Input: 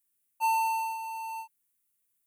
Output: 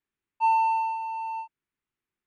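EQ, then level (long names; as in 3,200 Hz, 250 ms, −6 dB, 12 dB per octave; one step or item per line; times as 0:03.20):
low-pass filter 2,200 Hz 12 dB per octave
+5.0 dB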